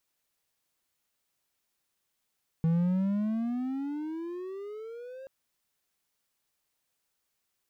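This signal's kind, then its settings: gliding synth tone triangle, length 2.63 s, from 161 Hz, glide +21 st, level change -19.5 dB, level -20 dB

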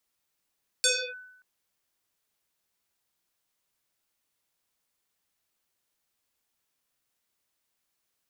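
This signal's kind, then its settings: FM tone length 0.58 s, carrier 1500 Hz, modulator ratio 0.67, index 7.8, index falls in 0.30 s linear, decay 0.85 s, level -18 dB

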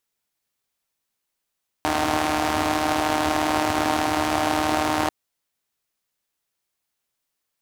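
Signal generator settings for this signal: four-cylinder engine model, steady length 3.24 s, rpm 4600, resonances 95/300/700 Hz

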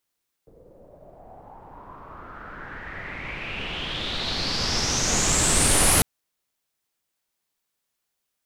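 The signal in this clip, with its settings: swept filtered noise pink, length 5.55 s lowpass, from 450 Hz, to 11000 Hz, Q 5.3, exponential, gain ramp +34.5 dB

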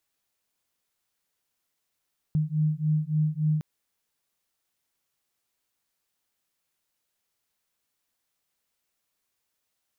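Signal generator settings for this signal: beating tones 152 Hz, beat 3.5 Hz, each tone -25.5 dBFS 1.26 s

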